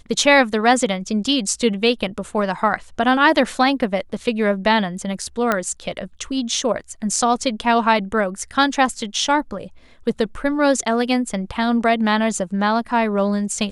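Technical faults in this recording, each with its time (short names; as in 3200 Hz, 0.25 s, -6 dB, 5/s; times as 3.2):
5.52 pop -5 dBFS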